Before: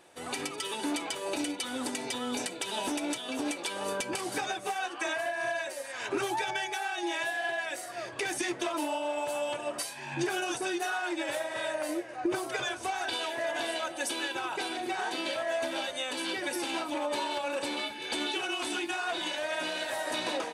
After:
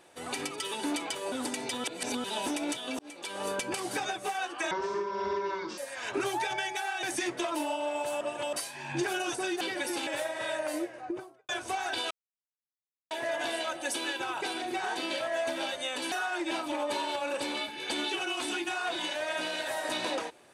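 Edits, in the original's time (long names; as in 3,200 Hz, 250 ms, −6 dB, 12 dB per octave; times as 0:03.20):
0:01.32–0:01.73: remove
0:02.25–0:02.65: reverse
0:03.40–0:03.85: fade in
0:05.12–0:05.75: play speed 59%
0:07.00–0:08.25: remove
0:09.43–0:09.75: reverse
0:10.83–0:11.22: swap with 0:16.27–0:16.73
0:11.92–0:12.64: fade out and dull
0:13.26: splice in silence 1.00 s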